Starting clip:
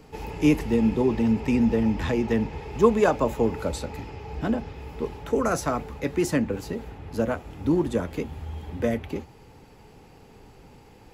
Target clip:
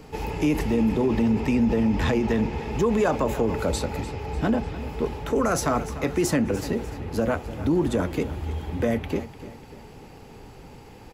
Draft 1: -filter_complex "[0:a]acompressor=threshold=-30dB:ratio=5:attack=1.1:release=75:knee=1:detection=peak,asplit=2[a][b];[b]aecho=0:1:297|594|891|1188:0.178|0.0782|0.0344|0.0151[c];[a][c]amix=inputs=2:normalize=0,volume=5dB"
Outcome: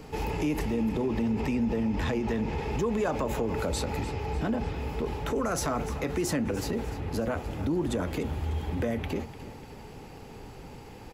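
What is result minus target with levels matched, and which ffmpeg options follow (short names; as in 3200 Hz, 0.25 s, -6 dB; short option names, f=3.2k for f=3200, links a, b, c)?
compressor: peak gain reduction +6.5 dB
-filter_complex "[0:a]acompressor=threshold=-22dB:ratio=5:attack=1.1:release=75:knee=1:detection=peak,asplit=2[a][b];[b]aecho=0:1:297|594|891|1188:0.178|0.0782|0.0344|0.0151[c];[a][c]amix=inputs=2:normalize=0,volume=5dB"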